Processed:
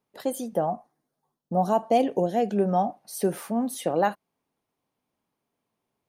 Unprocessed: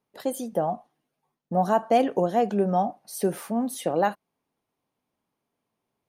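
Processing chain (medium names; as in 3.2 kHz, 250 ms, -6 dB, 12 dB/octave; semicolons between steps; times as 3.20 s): 0.65–2.55 s: peaking EQ 3.6 kHz -> 1 kHz -13.5 dB 0.61 oct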